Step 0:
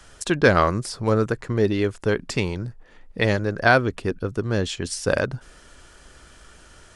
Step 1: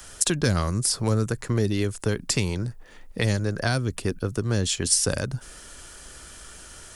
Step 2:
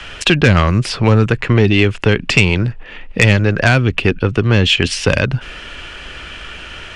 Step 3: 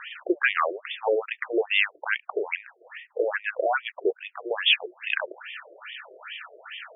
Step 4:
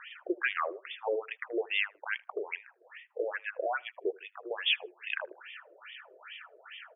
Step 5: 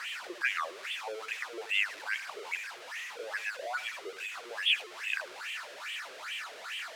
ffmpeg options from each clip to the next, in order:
ffmpeg -i in.wav -filter_complex "[0:a]aemphasis=mode=production:type=50fm,acrossover=split=210|5000[link_01][link_02][link_03];[link_02]acompressor=threshold=-28dB:ratio=6[link_04];[link_01][link_04][link_03]amix=inputs=3:normalize=0,volume=2dB" out.wav
ffmpeg -i in.wav -af "lowpass=frequency=2700:width_type=q:width=3.9,aeval=exprs='0.631*sin(PI/2*2*val(0)/0.631)':channel_layout=same,volume=2.5dB" out.wav
ffmpeg -i in.wav -af "bandreject=frequency=60:width_type=h:width=6,bandreject=frequency=120:width_type=h:width=6,bandreject=frequency=180:width_type=h:width=6,bandreject=frequency=240:width_type=h:width=6,bandreject=frequency=300:width_type=h:width=6,bandreject=frequency=360:width_type=h:width=6,afftfilt=real='re*between(b*sr/1024,470*pow(2600/470,0.5+0.5*sin(2*PI*2.4*pts/sr))/1.41,470*pow(2600/470,0.5+0.5*sin(2*PI*2.4*pts/sr))*1.41)':imag='im*between(b*sr/1024,470*pow(2600/470,0.5+0.5*sin(2*PI*2.4*pts/sr))/1.41,470*pow(2600/470,0.5+0.5*sin(2*PI*2.4*pts/sr))*1.41)':win_size=1024:overlap=0.75,volume=-3.5dB" out.wav
ffmpeg -i in.wav -filter_complex "[0:a]asplit=2[link_01][link_02];[link_02]adelay=78,lowpass=frequency=1200:poles=1,volume=-23dB,asplit=2[link_03][link_04];[link_04]adelay=78,lowpass=frequency=1200:poles=1,volume=0.33[link_05];[link_01][link_03][link_05]amix=inputs=3:normalize=0,volume=-8dB" out.wav
ffmpeg -i in.wav -af "aeval=exprs='val(0)+0.5*0.0188*sgn(val(0))':channel_layout=same,bandpass=frequency=3000:width_type=q:width=0.57:csg=0" out.wav

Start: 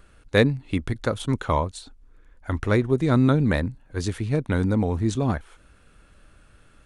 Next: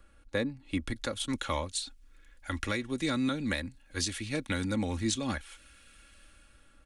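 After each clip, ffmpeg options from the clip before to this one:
ffmpeg -i in.wav -filter_complex "[0:a]aecho=1:1:3.6:0.56,acrossover=split=180|1100|1800[link_01][link_02][link_03][link_04];[link_04]dynaudnorm=framelen=260:gausssize=7:maxgain=15dB[link_05];[link_01][link_02][link_03][link_05]amix=inputs=4:normalize=0,alimiter=limit=-10.5dB:level=0:latency=1:release=398,volume=-8.5dB" out.wav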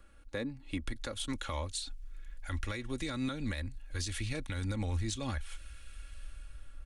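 ffmpeg -i in.wav -af "asubboost=boost=7:cutoff=80,alimiter=level_in=2dB:limit=-24dB:level=0:latency=1:release=147,volume=-2dB,aeval=exprs='0.0501*(cos(1*acos(clip(val(0)/0.0501,-1,1)))-cos(1*PI/2))+0.00178*(cos(2*acos(clip(val(0)/0.0501,-1,1)))-cos(2*PI/2))+0.001*(cos(4*acos(clip(val(0)/0.0501,-1,1)))-cos(4*PI/2))':channel_layout=same" out.wav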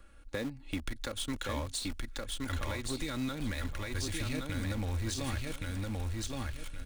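ffmpeg -i in.wav -filter_complex "[0:a]asplit=2[link_01][link_02];[link_02]acrusher=bits=5:mix=0:aa=0.000001,volume=-8.5dB[link_03];[link_01][link_03]amix=inputs=2:normalize=0,aecho=1:1:1120|2240|3360:0.668|0.16|0.0385,acompressor=threshold=-37dB:ratio=2,volume=2dB" out.wav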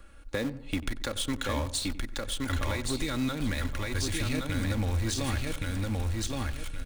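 ffmpeg -i in.wav -filter_complex "[0:a]asplit=2[link_01][link_02];[link_02]adelay=93,lowpass=frequency=1300:poles=1,volume=-14dB,asplit=2[link_03][link_04];[link_04]adelay=93,lowpass=frequency=1300:poles=1,volume=0.47,asplit=2[link_05][link_06];[link_06]adelay=93,lowpass=frequency=1300:poles=1,volume=0.47,asplit=2[link_07][link_08];[link_08]adelay=93,lowpass=frequency=1300:poles=1,volume=0.47[link_09];[link_01][link_03][link_05][link_07][link_09]amix=inputs=5:normalize=0,volume=5dB" out.wav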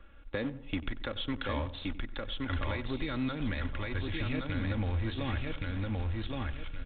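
ffmpeg -i in.wav -af "volume=-3dB" -ar 8000 -c:a pcm_mulaw out.wav

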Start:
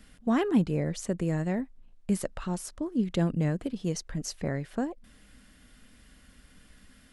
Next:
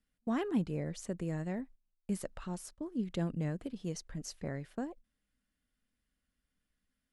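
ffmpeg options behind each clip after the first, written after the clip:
ffmpeg -i in.wav -af "agate=range=-20dB:threshold=-43dB:ratio=16:detection=peak,volume=-8dB" out.wav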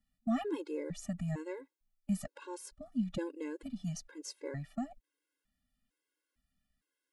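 ffmpeg -i in.wav -af "afftfilt=real='re*gt(sin(2*PI*1.1*pts/sr)*(1-2*mod(floor(b*sr/1024/280),2)),0)':imag='im*gt(sin(2*PI*1.1*pts/sr)*(1-2*mod(floor(b*sr/1024/280),2)),0)':win_size=1024:overlap=0.75,volume=2.5dB" out.wav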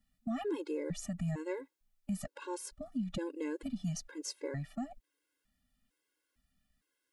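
ffmpeg -i in.wav -af "alimiter=level_in=8.5dB:limit=-24dB:level=0:latency=1:release=175,volume=-8.5dB,volume=4dB" out.wav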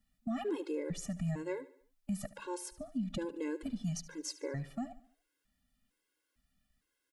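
ffmpeg -i in.wav -af "aecho=1:1:73|146|219|292:0.133|0.064|0.0307|0.0147" out.wav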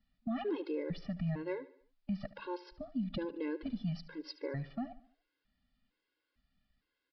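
ffmpeg -i in.wav -af "aresample=11025,aresample=44100" out.wav

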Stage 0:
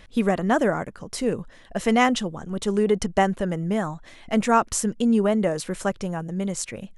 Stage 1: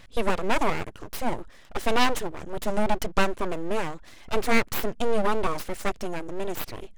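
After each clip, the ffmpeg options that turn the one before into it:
ffmpeg -i in.wav -af "aeval=exprs='abs(val(0))':channel_layout=same" out.wav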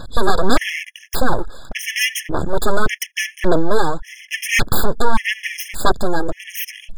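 ffmpeg -i in.wav -af "aeval=exprs='0.531*sin(PI/2*4.47*val(0)/0.531)':channel_layout=same,aphaser=in_gain=1:out_gain=1:delay=2.5:decay=0.45:speed=1.7:type=sinusoidal,afftfilt=real='re*gt(sin(2*PI*0.87*pts/sr)*(1-2*mod(floor(b*sr/1024/1700),2)),0)':imag='im*gt(sin(2*PI*0.87*pts/sr)*(1-2*mod(floor(b*sr/1024/1700),2)),0)':win_size=1024:overlap=0.75,volume=-2.5dB" out.wav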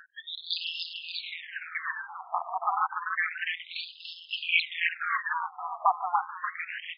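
ffmpeg -i in.wav -filter_complex "[0:a]tremolo=f=170:d=0.919,asplit=9[link_01][link_02][link_03][link_04][link_05][link_06][link_07][link_08][link_09];[link_02]adelay=290,afreqshift=32,volume=-7dB[link_10];[link_03]adelay=580,afreqshift=64,volume=-11.3dB[link_11];[link_04]adelay=870,afreqshift=96,volume=-15.6dB[link_12];[link_05]adelay=1160,afreqshift=128,volume=-19.9dB[link_13];[link_06]adelay=1450,afreqshift=160,volume=-24.2dB[link_14];[link_07]adelay=1740,afreqshift=192,volume=-28.5dB[link_15];[link_08]adelay=2030,afreqshift=224,volume=-32.8dB[link_16];[link_09]adelay=2320,afreqshift=256,volume=-37.1dB[link_17];[link_01][link_10][link_11][link_12][link_13][link_14][link_15][link_16][link_17]amix=inputs=9:normalize=0,afftfilt=real='re*between(b*sr/1024,910*pow(3800/910,0.5+0.5*sin(2*PI*0.3*pts/sr))/1.41,910*pow(3800/910,0.5+0.5*sin(2*PI*0.3*pts/sr))*1.41)':imag='im*between(b*sr/1024,910*pow(3800/910,0.5+0.5*sin(2*PI*0.3*pts/sr))/1.41,910*pow(3800/910,0.5+0.5*sin(2*PI*0.3*pts/sr))*1.41)':win_size=1024:overlap=0.75,volume=1dB" out.wav

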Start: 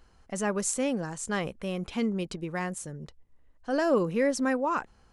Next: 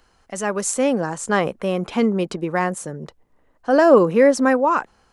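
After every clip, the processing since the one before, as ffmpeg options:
ffmpeg -i in.wav -filter_complex "[0:a]lowshelf=frequency=270:gain=-9.5,acrossover=split=110|1500[link_01][link_02][link_03];[link_02]dynaudnorm=framelen=210:gausssize=7:maxgain=9dB[link_04];[link_01][link_04][link_03]amix=inputs=3:normalize=0,volume=6dB" out.wav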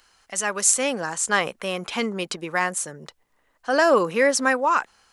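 ffmpeg -i in.wav -af "tiltshelf=frequency=940:gain=-8.5,volume=-2dB" out.wav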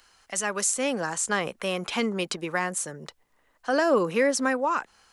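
ffmpeg -i in.wav -filter_complex "[0:a]acrossover=split=440[link_01][link_02];[link_02]acompressor=threshold=-26dB:ratio=2.5[link_03];[link_01][link_03]amix=inputs=2:normalize=0" out.wav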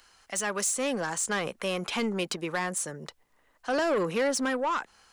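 ffmpeg -i in.wav -af "asoftclip=type=tanh:threshold=-22dB" out.wav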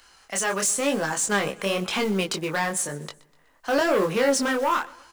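ffmpeg -i in.wav -af "acrusher=bits=5:mode=log:mix=0:aa=0.000001,flanger=delay=19.5:depth=7.1:speed=0.97,aecho=1:1:124|248|372:0.0841|0.0387|0.0178,volume=8dB" out.wav

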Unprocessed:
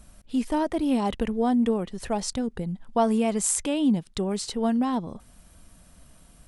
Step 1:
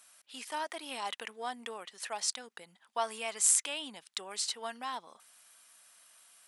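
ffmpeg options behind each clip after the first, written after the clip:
ffmpeg -i in.wav -af "highpass=1300" out.wav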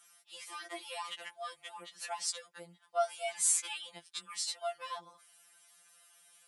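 ffmpeg -i in.wav -af "afftfilt=real='re*2.83*eq(mod(b,8),0)':imag='im*2.83*eq(mod(b,8),0)':win_size=2048:overlap=0.75" out.wav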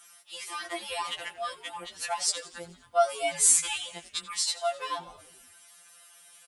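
ffmpeg -i in.wav -filter_complex "[0:a]asplit=7[link_01][link_02][link_03][link_04][link_05][link_06][link_07];[link_02]adelay=87,afreqshift=-130,volume=-18.5dB[link_08];[link_03]adelay=174,afreqshift=-260,volume=-22.7dB[link_09];[link_04]adelay=261,afreqshift=-390,volume=-26.8dB[link_10];[link_05]adelay=348,afreqshift=-520,volume=-31dB[link_11];[link_06]adelay=435,afreqshift=-650,volume=-35.1dB[link_12];[link_07]adelay=522,afreqshift=-780,volume=-39.3dB[link_13];[link_01][link_08][link_09][link_10][link_11][link_12][link_13]amix=inputs=7:normalize=0,volume=8dB" out.wav

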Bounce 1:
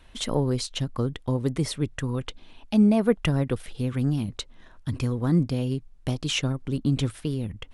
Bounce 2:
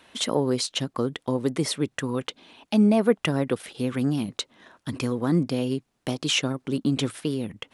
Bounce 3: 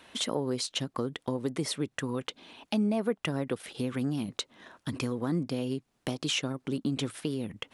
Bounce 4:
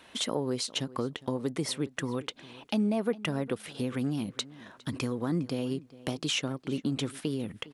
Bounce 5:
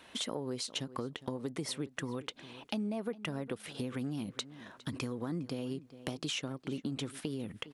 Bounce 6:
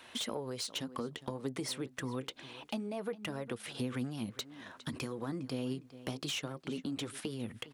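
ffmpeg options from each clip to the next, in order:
ffmpeg -i in.wav -filter_complex "[0:a]highpass=220,asplit=2[link_01][link_02];[link_02]alimiter=limit=-19.5dB:level=0:latency=1:release=154,volume=-3dB[link_03];[link_01][link_03]amix=inputs=2:normalize=0" out.wav
ffmpeg -i in.wav -af "acompressor=threshold=-32dB:ratio=2" out.wav
ffmpeg -i in.wav -filter_complex "[0:a]asplit=2[link_01][link_02];[link_02]adelay=408,lowpass=frequency=4000:poles=1,volume=-19dB,asplit=2[link_03][link_04];[link_04]adelay=408,lowpass=frequency=4000:poles=1,volume=0.16[link_05];[link_01][link_03][link_05]amix=inputs=3:normalize=0" out.wav
ffmpeg -i in.wav -af "acompressor=threshold=-33dB:ratio=3,volume=-1.5dB" out.wav
ffmpeg -i in.wav -filter_complex "[0:a]acrossover=split=630[link_01][link_02];[link_01]flanger=delay=8.2:depth=7.6:regen=29:speed=0.26:shape=sinusoidal[link_03];[link_02]asoftclip=type=tanh:threshold=-34dB[link_04];[link_03][link_04]amix=inputs=2:normalize=0,volume=2.5dB" out.wav

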